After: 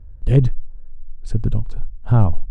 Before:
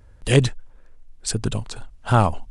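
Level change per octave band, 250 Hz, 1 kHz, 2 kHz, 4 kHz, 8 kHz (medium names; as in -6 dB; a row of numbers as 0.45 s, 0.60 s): +1.0 dB, -8.5 dB, under -10 dB, under -15 dB, under -20 dB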